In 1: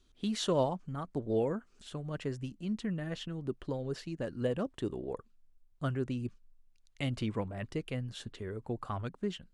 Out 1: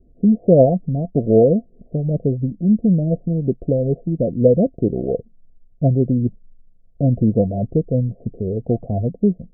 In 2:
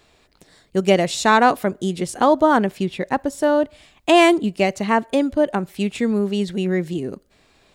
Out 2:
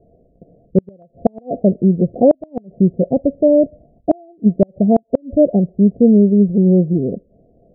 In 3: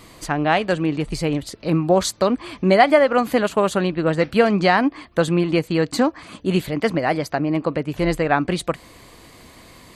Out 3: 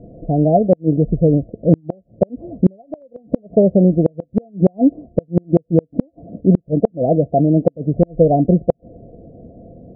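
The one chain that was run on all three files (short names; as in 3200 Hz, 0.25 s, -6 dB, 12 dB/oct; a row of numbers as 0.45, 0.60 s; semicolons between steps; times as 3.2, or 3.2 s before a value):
rippled Chebyshev low-pass 710 Hz, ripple 6 dB; flipped gate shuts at -13 dBFS, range -37 dB; normalise peaks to -1.5 dBFS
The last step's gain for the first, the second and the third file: +20.5, +11.5, +11.5 dB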